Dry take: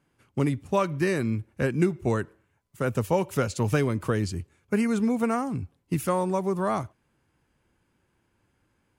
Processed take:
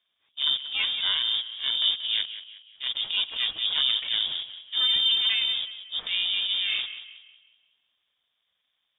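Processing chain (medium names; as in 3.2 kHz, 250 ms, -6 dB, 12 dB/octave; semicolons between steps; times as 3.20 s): coarse spectral quantiser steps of 15 dB; dynamic bell 260 Hz, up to +5 dB, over -37 dBFS, Q 1.5; ring modulator 240 Hz; in parallel at -5.5 dB: word length cut 6-bit, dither none; on the sum: transient shaper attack -11 dB, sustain +6 dB; on a send: tape echo 183 ms, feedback 46%, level -9 dB, low-pass 2.1 kHz; on the sum: frequency inversion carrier 3.6 kHz; trim -3.5 dB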